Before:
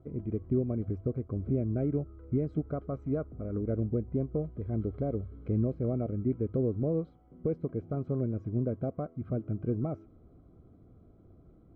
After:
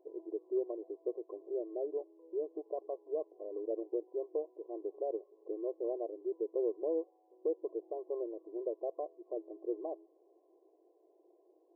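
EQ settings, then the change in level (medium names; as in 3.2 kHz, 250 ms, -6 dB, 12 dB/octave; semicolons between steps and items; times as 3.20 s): brick-wall FIR band-pass 320–1100 Hz; -1.0 dB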